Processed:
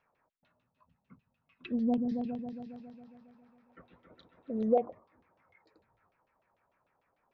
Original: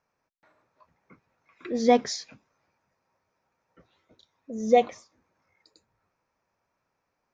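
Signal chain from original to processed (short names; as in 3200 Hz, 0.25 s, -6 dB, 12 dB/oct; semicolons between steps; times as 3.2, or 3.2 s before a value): 0.37–2.7 spectral gain 260–2500 Hz -14 dB; treble ducked by the level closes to 640 Hz, closed at -24.5 dBFS; compressor 3:1, threshold -28 dBFS, peak gain reduction 10 dB; LFO low-pass saw down 6.7 Hz 570–3400 Hz; 1.84–4.62 repeats that get brighter 0.137 s, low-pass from 400 Hz, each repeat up 2 oct, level -3 dB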